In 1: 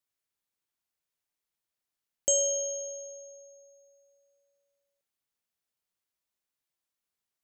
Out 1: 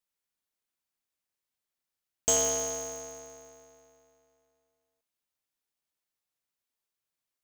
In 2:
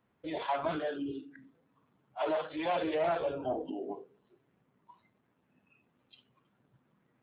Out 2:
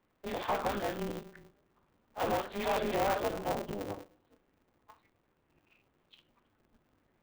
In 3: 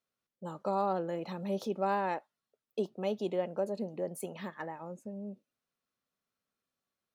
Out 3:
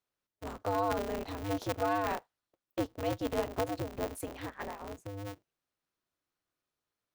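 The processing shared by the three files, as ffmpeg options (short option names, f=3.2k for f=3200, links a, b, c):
-af "aeval=exprs='val(0)*sgn(sin(2*PI*100*n/s))':c=same"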